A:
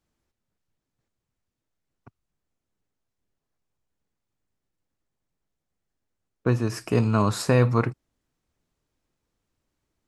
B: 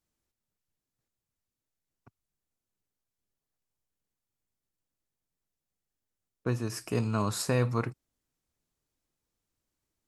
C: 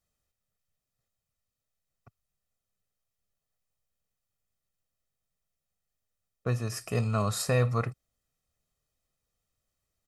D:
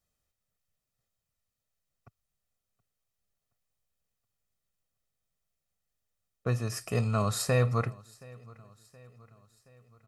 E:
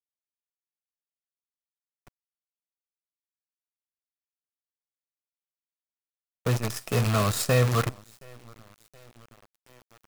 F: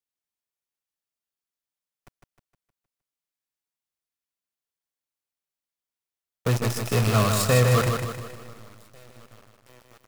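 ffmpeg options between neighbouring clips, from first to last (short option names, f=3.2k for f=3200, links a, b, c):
-af "aemphasis=mode=production:type=cd,volume=-7.5dB"
-af "aecho=1:1:1.6:0.6"
-af "aecho=1:1:723|1446|2169|2892:0.0668|0.0361|0.0195|0.0105"
-af "acrusher=bits=6:dc=4:mix=0:aa=0.000001,volume=3.5dB"
-af "aecho=1:1:155|310|465|620|775|930:0.562|0.264|0.124|0.0584|0.0274|0.0129,volume=2dB"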